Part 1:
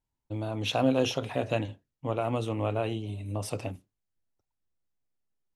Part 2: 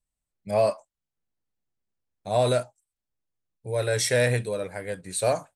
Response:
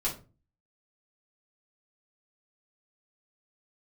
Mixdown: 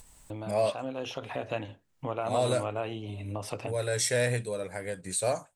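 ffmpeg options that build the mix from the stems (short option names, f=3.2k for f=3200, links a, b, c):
-filter_complex "[0:a]equalizer=f=1.3k:w=0.38:g=8,volume=-8.5dB,afade=t=in:st=0.98:d=0.71:silence=0.398107[a];[1:a]equalizer=f=7.5k:w=2:g=5.5,volume=-5dB[b];[a][b]amix=inputs=2:normalize=0,acompressor=mode=upward:threshold=-29dB:ratio=2.5"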